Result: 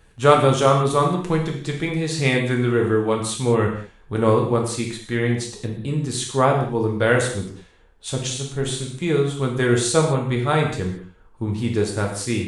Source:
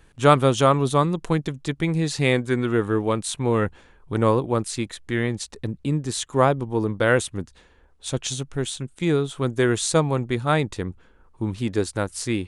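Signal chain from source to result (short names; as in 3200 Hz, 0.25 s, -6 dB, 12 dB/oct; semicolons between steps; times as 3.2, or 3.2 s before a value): 8.58–9.04 doubler 41 ms -7 dB; non-linear reverb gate 0.24 s falling, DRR 0 dB; gain -1 dB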